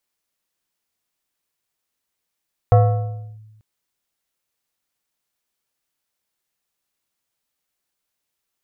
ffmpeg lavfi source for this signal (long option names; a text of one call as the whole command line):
ffmpeg -f lavfi -i "aevalsrc='0.473*pow(10,-3*t/1.24)*sin(2*PI*108*t+0.81*clip(1-t/0.67,0,1)*sin(2*PI*5.61*108*t))':duration=0.89:sample_rate=44100" out.wav